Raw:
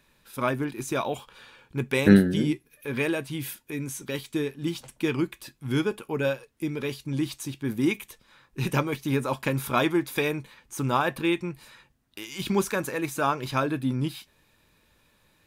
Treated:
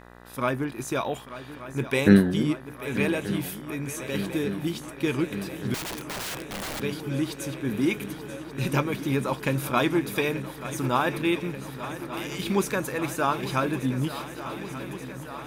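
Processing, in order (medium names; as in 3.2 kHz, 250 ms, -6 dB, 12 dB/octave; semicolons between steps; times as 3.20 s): shuffle delay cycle 1182 ms, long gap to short 3:1, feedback 77%, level -14 dB; 5.74–6.80 s: integer overflow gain 28.5 dB; mains buzz 60 Hz, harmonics 33, -49 dBFS -2 dB/octave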